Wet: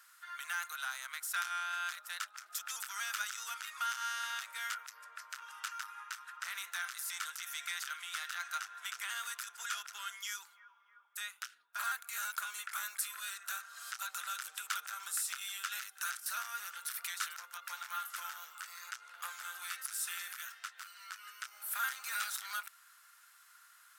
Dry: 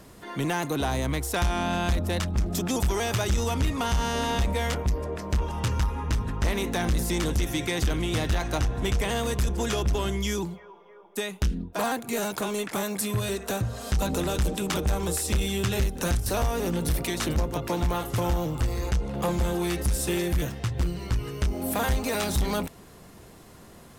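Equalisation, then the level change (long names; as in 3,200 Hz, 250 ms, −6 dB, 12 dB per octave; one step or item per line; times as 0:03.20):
four-pole ladder high-pass 1,300 Hz, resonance 75%
spectral tilt +3 dB per octave
−3.5 dB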